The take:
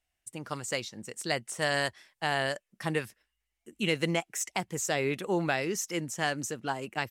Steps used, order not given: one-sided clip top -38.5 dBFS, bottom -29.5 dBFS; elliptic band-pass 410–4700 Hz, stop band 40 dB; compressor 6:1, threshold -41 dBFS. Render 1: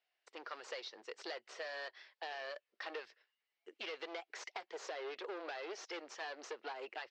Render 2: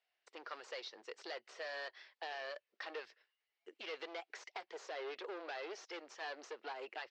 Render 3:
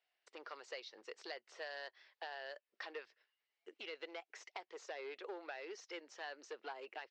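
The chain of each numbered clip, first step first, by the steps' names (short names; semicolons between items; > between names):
one-sided clip > elliptic band-pass > compressor; one-sided clip > compressor > elliptic band-pass; compressor > one-sided clip > elliptic band-pass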